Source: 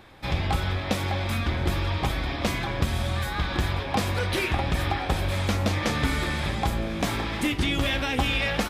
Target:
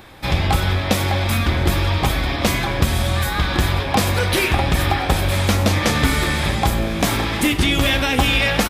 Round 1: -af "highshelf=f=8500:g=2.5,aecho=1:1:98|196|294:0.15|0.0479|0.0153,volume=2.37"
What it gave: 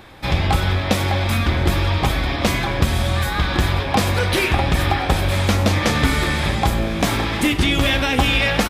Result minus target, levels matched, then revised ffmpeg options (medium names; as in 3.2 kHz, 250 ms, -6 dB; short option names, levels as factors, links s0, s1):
8 kHz band -2.5 dB
-af "highshelf=f=8500:g=9,aecho=1:1:98|196|294:0.15|0.0479|0.0153,volume=2.37"